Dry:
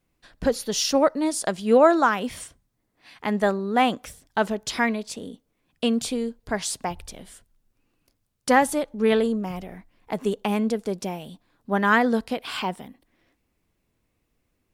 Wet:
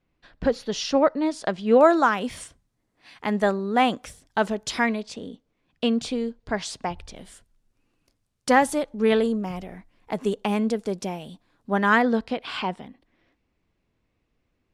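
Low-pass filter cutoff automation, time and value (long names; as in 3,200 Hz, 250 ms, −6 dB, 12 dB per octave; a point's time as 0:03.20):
3,900 Hz
from 0:01.81 10,000 Hz
from 0:05.01 5,300 Hz
from 0:07.16 10,000 Hz
from 0:12.02 4,700 Hz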